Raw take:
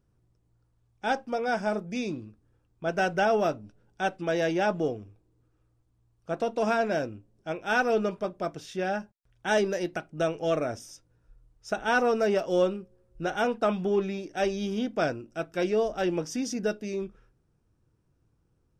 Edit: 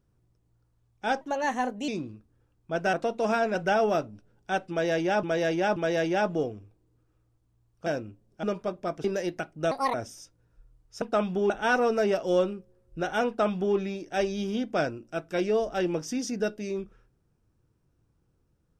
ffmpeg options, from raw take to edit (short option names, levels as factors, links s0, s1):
-filter_complex "[0:a]asplit=14[s0][s1][s2][s3][s4][s5][s6][s7][s8][s9][s10][s11][s12][s13];[s0]atrim=end=1.214[s14];[s1]atrim=start=1.21:end=2.01,asetpts=PTS-STARTPTS,asetrate=52479,aresample=44100,atrim=end_sample=29647,asetpts=PTS-STARTPTS[s15];[s2]atrim=start=2.006:end=3.062[s16];[s3]atrim=start=6.308:end=6.932[s17];[s4]atrim=start=3.058:end=4.742[s18];[s5]atrim=start=4.208:end=4.742[s19];[s6]atrim=start=4.208:end=6.312[s20];[s7]atrim=start=6.928:end=7.502[s21];[s8]atrim=start=7.998:end=8.612[s22];[s9]atrim=start=9.608:end=10.284[s23];[s10]atrim=start=10.28:end=10.65,asetpts=PTS-STARTPTS,asetrate=72324,aresample=44100,atrim=end_sample=9949,asetpts=PTS-STARTPTS[s24];[s11]atrim=start=10.646:end=11.732[s25];[s12]atrim=start=13.508:end=13.992[s26];[s13]atrim=start=11.728[s27];[s14][s15]acrossfade=d=0.004:c1=hsin:c2=hsin[s28];[s28][s16]acrossfade=d=0.004:c1=hsin:c2=hsin[s29];[s29][s17]acrossfade=d=0.004:c1=hsin:c2=hsin[s30];[s30][s18]acrossfade=d=0.004:c1=hsin:c2=hsin[s31];[s31][s19]acrossfade=d=0.004:c1=hsin:c2=hsin[s32];[s32][s20]acrossfade=d=0.004:c1=hsin:c2=hsin[s33];[s33][s21]acrossfade=d=0.004:c1=hsin:c2=hsin[s34];[s34][s22]acrossfade=d=0.004:c1=hsin:c2=hsin[s35];[s35][s23]acrossfade=d=0.004:c1=hsin:c2=hsin[s36];[s36][s24]acrossfade=d=0.004:c1=hsin:c2=hsin[s37];[s37][s25]acrossfade=d=0.004:c1=hsin:c2=hsin[s38];[s38][s26]acrossfade=d=0.004:c1=hsin:c2=hsin[s39];[s39][s27]acrossfade=d=0.004:c1=hsin:c2=hsin"